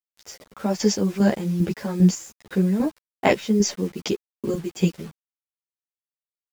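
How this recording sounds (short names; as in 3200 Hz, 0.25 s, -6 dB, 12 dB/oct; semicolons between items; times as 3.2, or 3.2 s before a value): chopped level 2.5 Hz, depth 60%, duty 35%; a quantiser's noise floor 8-bit, dither none; a shimmering, thickened sound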